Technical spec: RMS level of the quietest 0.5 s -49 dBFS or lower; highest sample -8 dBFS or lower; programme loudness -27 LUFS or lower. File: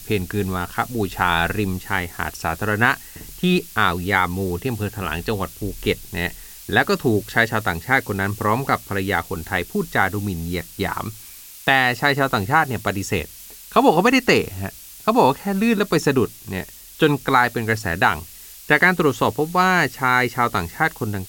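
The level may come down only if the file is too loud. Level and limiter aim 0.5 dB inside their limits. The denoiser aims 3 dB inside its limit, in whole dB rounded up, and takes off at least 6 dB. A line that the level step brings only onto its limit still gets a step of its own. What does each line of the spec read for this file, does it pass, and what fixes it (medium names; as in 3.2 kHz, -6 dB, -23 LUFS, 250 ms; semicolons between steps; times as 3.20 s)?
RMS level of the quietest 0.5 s -41 dBFS: fail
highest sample -2.0 dBFS: fail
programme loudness -20.5 LUFS: fail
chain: noise reduction 6 dB, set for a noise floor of -41 dBFS; trim -7 dB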